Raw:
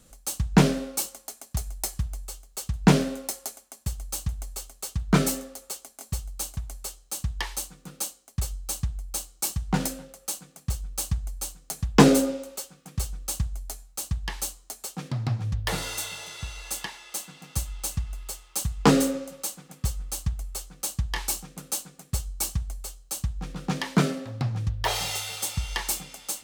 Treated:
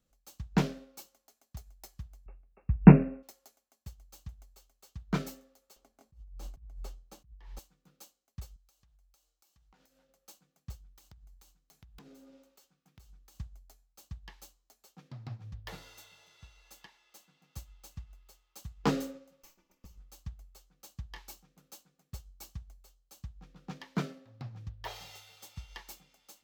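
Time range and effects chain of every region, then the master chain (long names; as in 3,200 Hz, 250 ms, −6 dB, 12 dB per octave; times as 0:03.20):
0:02.26–0:03.23: linear-phase brick-wall low-pass 2,800 Hz + low-shelf EQ 420 Hz +11 dB
0:05.76–0:07.59: spectral tilt −3 dB per octave + compressor whose output falls as the input rises −30 dBFS
0:08.56–0:10.09: parametric band 110 Hz −14 dB 2.9 octaves + hum removal 154 Hz, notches 4 + downward compressor 12 to 1, threshold −41 dBFS
0:10.79–0:13.36: parametric band 540 Hz −5 dB 0.47 octaves + downward compressor 12 to 1, threshold −31 dBFS + wrap-around overflow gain 25 dB
0:19.42–0:19.98: lower of the sound and its delayed copy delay 3.4 ms + EQ curve with evenly spaced ripples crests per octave 0.78, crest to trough 6 dB + downward compressor 5 to 1, threshold −29 dBFS
whole clip: parametric band 9,200 Hz −12 dB 0.54 octaves; expander for the loud parts 1.5 to 1, over −37 dBFS; level −4.5 dB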